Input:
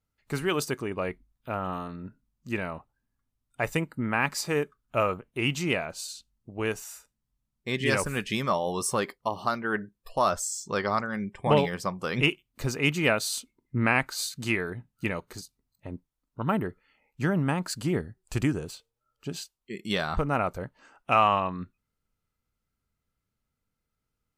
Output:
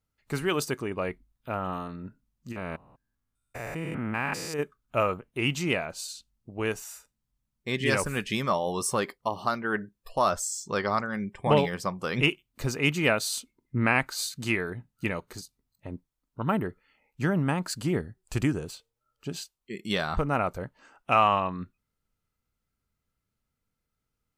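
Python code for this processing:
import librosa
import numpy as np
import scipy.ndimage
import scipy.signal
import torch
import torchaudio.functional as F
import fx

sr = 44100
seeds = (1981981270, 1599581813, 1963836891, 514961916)

y = fx.spec_steps(x, sr, hold_ms=200, at=(2.51, 4.58), fade=0.02)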